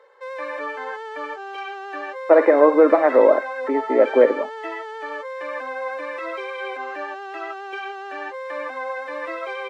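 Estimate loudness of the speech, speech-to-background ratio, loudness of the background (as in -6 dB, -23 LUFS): -16.5 LUFS, 13.5 dB, -30.0 LUFS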